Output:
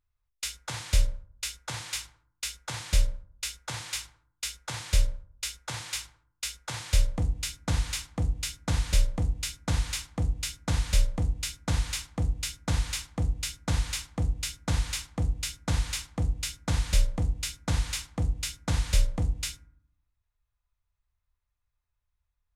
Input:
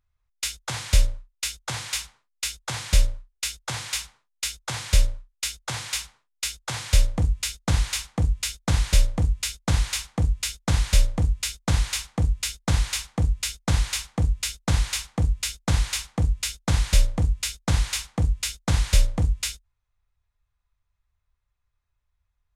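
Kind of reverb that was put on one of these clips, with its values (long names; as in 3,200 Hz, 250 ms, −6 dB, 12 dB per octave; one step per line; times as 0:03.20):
feedback delay network reverb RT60 0.64 s, low-frequency decay 1.4×, high-frequency decay 0.35×, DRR 11.5 dB
level −5.5 dB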